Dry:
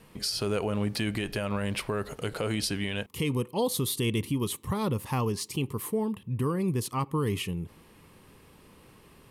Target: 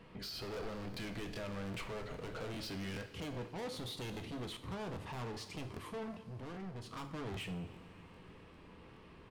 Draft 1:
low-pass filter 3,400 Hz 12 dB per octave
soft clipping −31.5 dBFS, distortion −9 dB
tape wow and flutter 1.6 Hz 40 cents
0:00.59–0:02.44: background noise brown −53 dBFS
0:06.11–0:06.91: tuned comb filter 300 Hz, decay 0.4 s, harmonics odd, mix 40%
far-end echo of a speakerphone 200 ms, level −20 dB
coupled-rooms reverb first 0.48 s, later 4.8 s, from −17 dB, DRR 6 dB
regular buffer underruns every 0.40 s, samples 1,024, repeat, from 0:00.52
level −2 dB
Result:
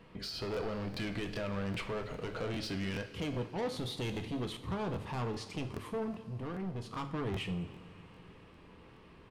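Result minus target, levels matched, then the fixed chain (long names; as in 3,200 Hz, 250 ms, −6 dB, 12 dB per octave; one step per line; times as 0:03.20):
soft clipping: distortion −4 dB
low-pass filter 3,400 Hz 12 dB per octave
soft clipping −39.5 dBFS, distortion −4 dB
tape wow and flutter 1.6 Hz 40 cents
0:00.59–0:02.44: background noise brown −53 dBFS
0:06.11–0:06.91: tuned comb filter 300 Hz, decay 0.4 s, harmonics odd, mix 40%
far-end echo of a speakerphone 200 ms, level −20 dB
coupled-rooms reverb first 0.48 s, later 4.8 s, from −17 dB, DRR 6 dB
regular buffer underruns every 0.40 s, samples 1,024, repeat, from 0:00.52
level −2 dB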